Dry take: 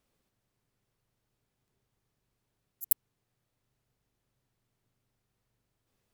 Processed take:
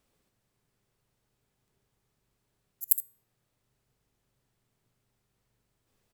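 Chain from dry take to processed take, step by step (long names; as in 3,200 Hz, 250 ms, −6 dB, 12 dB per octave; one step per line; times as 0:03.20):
parametric band 8,000 Hz +2.5 dB 0.24 octaves
tuned comb filter 420 Hz, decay 0.42 s, mix 40%
on a send: ambience of single reflections 65 ms −12.5 dB, 78 ms −16.5 dB
on the sum: level +7 dB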